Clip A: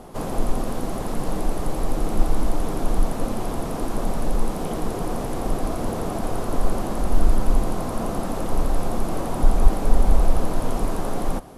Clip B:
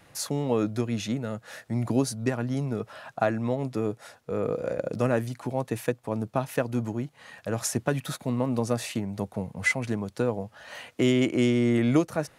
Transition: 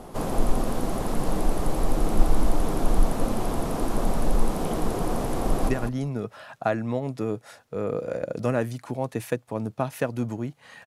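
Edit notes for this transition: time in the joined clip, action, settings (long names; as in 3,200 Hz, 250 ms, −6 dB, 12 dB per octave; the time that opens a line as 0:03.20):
clip A
0:05.40–0:05.69: delay throw 200 ms, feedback 10%, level −7 dB
0:05.69: continue with clip B from 0:02.25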